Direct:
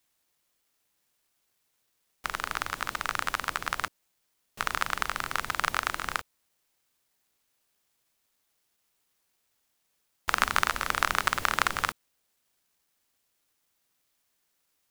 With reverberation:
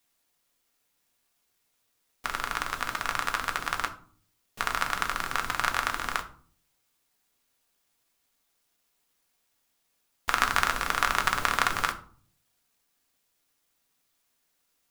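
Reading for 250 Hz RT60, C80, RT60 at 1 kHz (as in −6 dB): 0.75 s, 18.5 dB, 0.45 s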